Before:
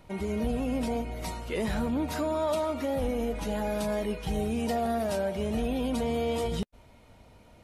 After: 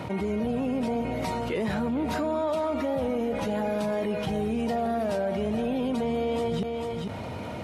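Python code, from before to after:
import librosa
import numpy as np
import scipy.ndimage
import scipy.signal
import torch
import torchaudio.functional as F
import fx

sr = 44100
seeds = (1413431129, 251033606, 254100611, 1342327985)

p1 = scipy.signal.sosfilt(scipy.signal.butter(4, 88.0, 'highpass', fs=sr, output='sos'), x)
p2 = fx.high_shelf(p1, sr, hz=4900.0, db=-12.0)
p3 = p2 + fx.echo_single(p2, sr, ms=447, db=-13.5, dry=0)
y = fx.env_flatten(p3, sr, amount_pct=70)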